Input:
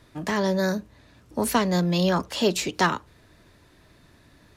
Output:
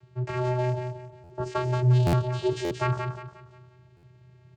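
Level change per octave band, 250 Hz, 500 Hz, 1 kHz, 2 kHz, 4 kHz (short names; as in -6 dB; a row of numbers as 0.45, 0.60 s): -8.0, -3.0, -5.0, -8.5, -11.5 dB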